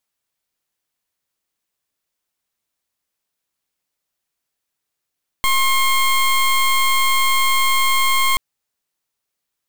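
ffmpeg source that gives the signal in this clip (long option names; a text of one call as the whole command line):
ffmpeg -f lavfi -i "aevalsrc='0.168*(2*lt(mod(1070*t,1),0.19)-1)':duration=2.93:sample_rate=44100" out.wav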